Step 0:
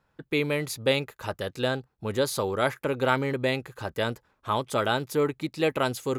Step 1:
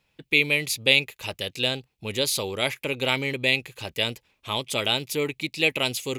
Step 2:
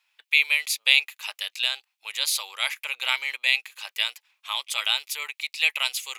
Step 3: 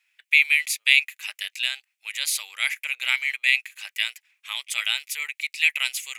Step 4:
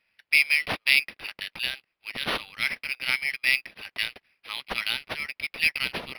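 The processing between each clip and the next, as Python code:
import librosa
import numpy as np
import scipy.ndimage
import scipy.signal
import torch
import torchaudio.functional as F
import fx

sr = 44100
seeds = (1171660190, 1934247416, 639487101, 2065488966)

y1 = fx.high_shelf_res(x, sr, hz=1900.0, db=8.5, q=3.0)
y1 = y1 * 10.0 ** (-2.0 / 20.0)
y2 = scipy.signal.sosfilt(scipy.signal.butter(4, 980.0, 'highpass', fs=sr, output='sos'), y1)
y2 = y2 * 10.0 ** (1.0 / 20.0)
y3 = fx.graphic_eq(y2, sr, hz=(250, 500, 1000, 2000, 4000, 8000), db=(-9, -6, -10, 9, -5, 4))
y3 = y3 * 10.0 ** (-1.0 / 20.0)
y4 = np.interp(np.arange(len(y3)), np.arange(len(y3))[::6], y3[::6])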